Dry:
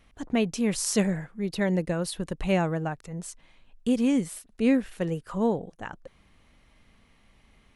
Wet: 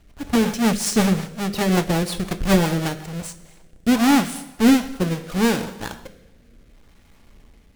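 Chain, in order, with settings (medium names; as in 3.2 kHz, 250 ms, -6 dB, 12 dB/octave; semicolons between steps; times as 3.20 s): square wave that keeps the level; two-slope reverb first 0.74 s, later 2.6 s, from -19 dB, DRR 7 dB; rotary cabinet horn 5.5 Hz, later 0.7 Hz, at 2.99 s; trim +3.5 dB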